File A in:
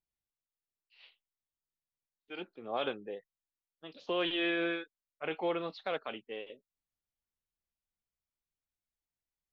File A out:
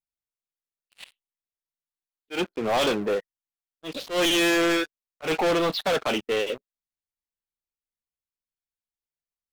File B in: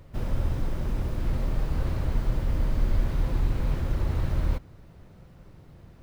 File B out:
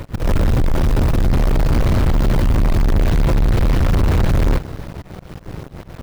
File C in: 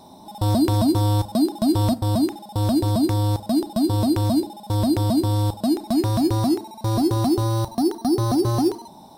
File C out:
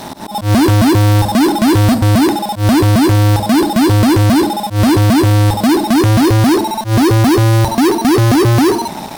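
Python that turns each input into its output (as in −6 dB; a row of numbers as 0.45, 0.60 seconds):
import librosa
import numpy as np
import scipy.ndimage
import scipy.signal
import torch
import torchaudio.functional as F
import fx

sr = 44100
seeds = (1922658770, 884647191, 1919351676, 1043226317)

y = fx.leveller(x, sr, passes=5)
y = fx.auto_swell(y, sr, attack_ms=109.0)
y = y * librosa.db_to_amplitude(3.0)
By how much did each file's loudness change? +11.5, +12.0, +10.0 LU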